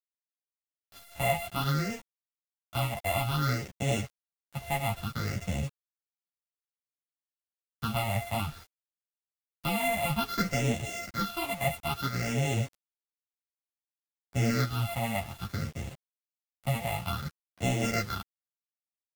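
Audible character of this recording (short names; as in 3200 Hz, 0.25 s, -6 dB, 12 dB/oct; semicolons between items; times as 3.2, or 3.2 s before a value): a buzz of ramps at a fixed pitch in blocks of 64 samples; phasing stages 6, 0.58 Hz, lowest notch 370–1300 Hz; a quantiser's noise floor 8-bit, dither none; a shimmering, thickened sound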